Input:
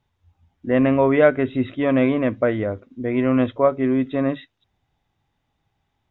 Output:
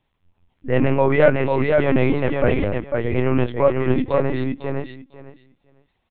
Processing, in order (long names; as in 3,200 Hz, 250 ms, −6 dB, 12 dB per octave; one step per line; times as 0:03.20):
parametric band 2,600 Hz +4 dB 0.79 octaves
on a send: repeating echo 503 ms, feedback 16%, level −3.5 dB
on the sum: linear-prediction vocoder at 8 kHz pitch kept